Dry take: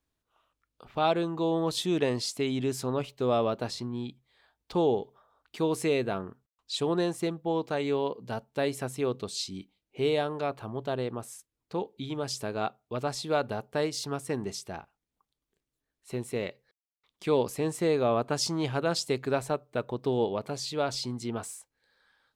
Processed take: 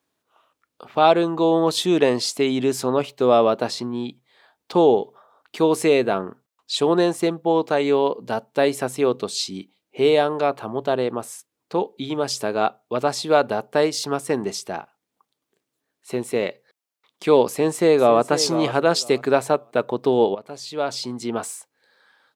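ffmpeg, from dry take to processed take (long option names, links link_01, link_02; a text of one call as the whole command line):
ffmpeg -i in.wav -filter_complex "[0:a]asplit=2[link_01][link_02];[link_02]afade=type=in:start_time=17.47:duration=0.01,afade=type=out:start_time=18.21:duration=0.01,aecho=0:1:500|1000|1500:0.266073|0.0532145|0.0106429[link_03];[link_01][link_03]amix=inputs=2:normalize=0,asplit=2[link_04][link_05];[link_04]atrim=end=20.35,asetpts=PTS-STARTPTS,afade=type=out:start_time=20.346:duration=0.004:curve=hsin:silence=0.16788[link_06];[link_05]atrim=start=20.35,asetpts=PTS-STARTPTS,afade=type=in:duration=1.09:silence=0.16788[link_07];[link_06][link_07]concat=n=2:v=0:a=1,highpass=180,equalizer=frequency=710:width=0.58:gain=3,volume=8dB" out.wav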